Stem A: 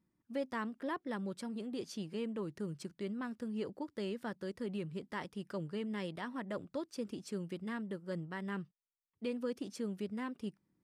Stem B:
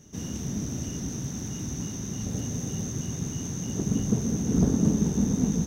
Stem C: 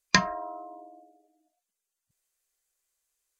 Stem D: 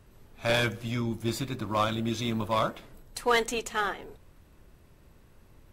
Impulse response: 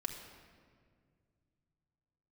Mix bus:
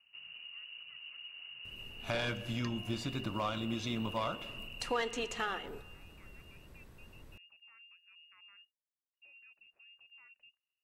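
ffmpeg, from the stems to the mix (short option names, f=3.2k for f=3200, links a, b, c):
-filter_complex "[0:a]alimiter=level_in=14.5dB:limit=-24dB:level=0:latency=1,volume=-14.5dB,volume=-14.5dB[a];[1:a]volume=-14dB[b];[2:a]adelay=2500,volume=-19dB[c];[3:a]acrossover=split=7300[d][e];[e]acompressor=threshold=-58dB:ratio=4:attack=1:release=60[f];[d][f]amix=inputs=2:normalize=0,adelay=1650,volume=0dB,asplit=2[g][h];[h]volume=-19.5dB[i];[a][b]amix=inputs=2:normalize=0,lowpass=f=2.6k:t=q:w=0.5098,lowpass=f=2.6k:t=q:w=0.6013,lowpass=f=2.6k:t=q:w=0.9,lowpass=f=2.6k:t=q:w=2.563,afreqshift=-3000,alimiter=level_in=16.5dB:limit=-24dB:level=0:latency=1:release=304,volume=-16.5dB,volume=0dB[j];[c][g]amix=inputs=2:normalize=0,acompressor=threshold=-35dB:ratio=6,volume=0dB[k];[4:a]atrim=start_sample=2205[l];[i][l]afir=irnorm=-1:irlink=0[m];[j][k][m]amix=inputs=3:normalize=0"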